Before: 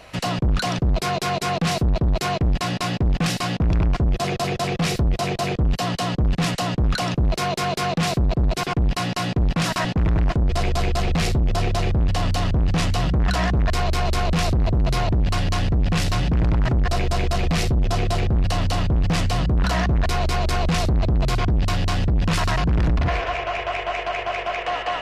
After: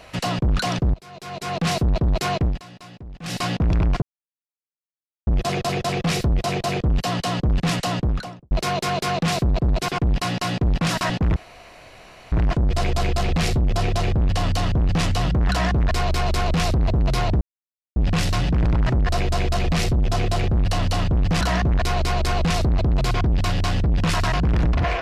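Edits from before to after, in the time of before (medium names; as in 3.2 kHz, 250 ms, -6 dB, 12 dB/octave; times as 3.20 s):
0.94–1.67 s: fade in quadratic, from -22.5 dB
2.44–3.40 s: dip -18 dB, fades 0.18 s
4.02 s: insert silence 1.25 s
6.68–7.26 s: studio fade out
10.11 s: insert room tone 0.96 s
15.20–15.75 s: mute
19.20–19.65 s: delete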